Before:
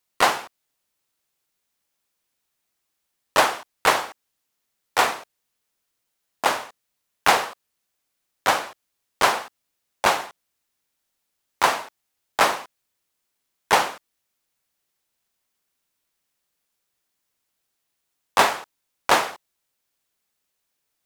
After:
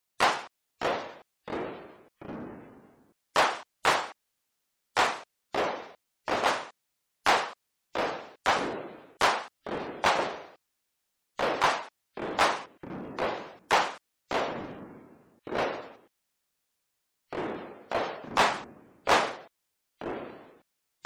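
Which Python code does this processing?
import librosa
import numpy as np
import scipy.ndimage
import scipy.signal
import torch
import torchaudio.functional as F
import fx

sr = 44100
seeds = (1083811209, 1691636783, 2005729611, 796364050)

y = fx.spec_gate(x, sr, threshold_db=-25, keep='strong')
y = np.clip(10.0 ** (12.5 / 20.0) * y, -1.0, 1.0) / 10.0 ** (12.5 / 20.0)
y = fx.echo_pitch(y, sr, ms=510, semitones=-7, count=3, db_per_echo=-6.0)
y = y * 10.0 ** (-4.0 / 20.0)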